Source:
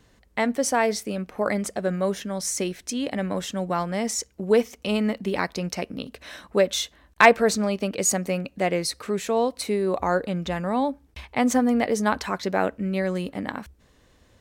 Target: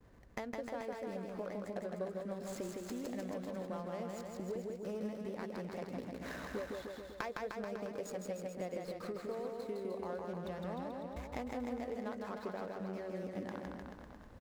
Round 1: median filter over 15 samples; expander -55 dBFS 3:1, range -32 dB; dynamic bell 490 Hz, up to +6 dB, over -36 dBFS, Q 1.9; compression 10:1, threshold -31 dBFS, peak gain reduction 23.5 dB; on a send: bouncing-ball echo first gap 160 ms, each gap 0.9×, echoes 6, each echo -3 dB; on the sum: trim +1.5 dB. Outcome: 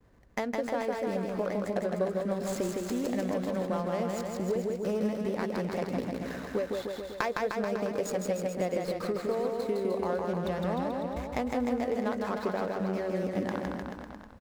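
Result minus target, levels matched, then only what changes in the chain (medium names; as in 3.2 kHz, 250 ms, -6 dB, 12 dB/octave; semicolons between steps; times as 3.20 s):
compression: peak gain reduction -11 dB
change: compression 10:1, threshold -43 dBFS, peak gain reduction 34 dB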